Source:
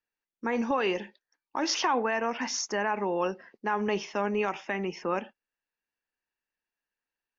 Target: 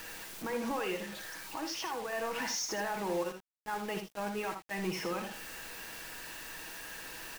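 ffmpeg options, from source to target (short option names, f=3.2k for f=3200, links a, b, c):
-filter_complex "[0:a]aeval=exprs='val(0)+0.5*0.0251*sgn(val(0))':c=same,asettb=1/sr,asplit=3[a][b][c];[a]atrim=end=3.234[d];[b]atrim=start=3.23:end=4.71,asetpts=PTS-STARTPTS,afade=t=in:d=0.004:c=qsin,afade=t=out:st=1.476:d=0.004:c=qsin,agate=range=-16dB:threshold=-26dB:ratio=16:detection=peak[e];[c]atrim=start=4.706[f];[d][e]acrossfade=d=0.004:c1=hsin:c2=qsin[g];[g][f]acrossfade=d=0.004:c1=qsin:c2=hsin,aecho=1:1:6.2:0.46,asettb=1/sr,asplit=3[h][i][j];[h]atrim=end=0.964[k];[i]atrim=start=0.96:end=2.13,asetpts=PTS-STARTPTS,afade=t=in:d=0.004:c=qsin,afade=t=out:st=1.166:d=0.004:c=qsin,acompressor=threshold=-33dB:ratio=3[l];[j]atrim=start=2.126[m];[k][l]acrossfade=d=0.004:c1=hsin:c2=qsin[n];[n][m]acrossfade=d=0.004:c1=qsin:c2=hsin,alimiter=limit=-21dB:level=0:latency=1:release=131,acrusher=bits=6:mix=0:aa=0.000001,aecho=1:1:58|79:0.316|0.355,volume=-6dB"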